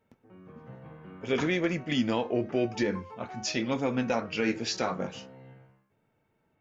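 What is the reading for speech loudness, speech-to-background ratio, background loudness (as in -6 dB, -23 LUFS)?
-30.0 LUFS, 18.0 dB, -48.0 LUFS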